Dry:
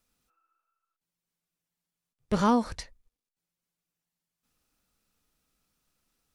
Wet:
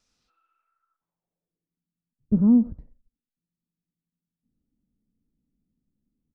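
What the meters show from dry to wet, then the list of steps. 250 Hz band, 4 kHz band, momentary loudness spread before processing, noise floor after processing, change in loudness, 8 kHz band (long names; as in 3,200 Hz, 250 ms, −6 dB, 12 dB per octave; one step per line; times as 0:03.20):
+8.5 dB, below −30 dB, 16 LU, below −85 dBFS, +6.0 dB, below −30 dB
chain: far-end echo of a speakerphone 90 ms, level −15 dB
low-pass filter sweep 5,800 Hz → 240 Hz, 0:00.14–0:01.86
level +1.5 dB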